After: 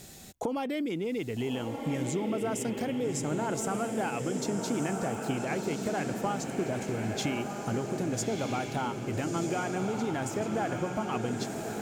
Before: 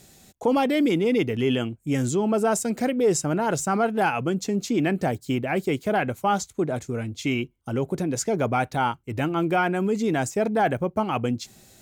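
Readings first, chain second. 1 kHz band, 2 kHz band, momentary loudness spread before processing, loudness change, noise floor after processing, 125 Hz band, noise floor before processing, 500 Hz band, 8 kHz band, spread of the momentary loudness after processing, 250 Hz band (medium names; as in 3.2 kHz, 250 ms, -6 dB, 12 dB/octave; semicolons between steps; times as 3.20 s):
-8.5 dB, -8.0 dB, 6 LU, -7.5 dB, -38 dBFS, -6.0 dB, -58 dBFS, -8.0 dB, -5.0 dB, 2 LU, -7.0 dB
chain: compression 12:1, threshold -33 dBFS, peak gain reduction 17 dB; on a send: echo that smears into a reverb 1288 ms, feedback 56%, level -4 dB; on the sum: trim +3.5 dB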